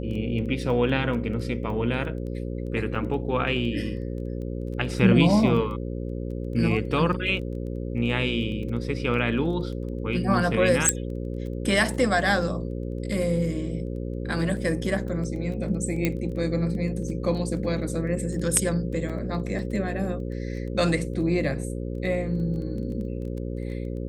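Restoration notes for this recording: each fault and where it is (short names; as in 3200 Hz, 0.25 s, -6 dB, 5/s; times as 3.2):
buzz 60 Hz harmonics 9 -31 dBFS
crackle 12/s -35 dBFS
2.95–2.96 gap 5.5 ms
10.89 pop -4 dBFS
16.05 pop -10 dBFS
19.09–19.1 gap 5.8 ms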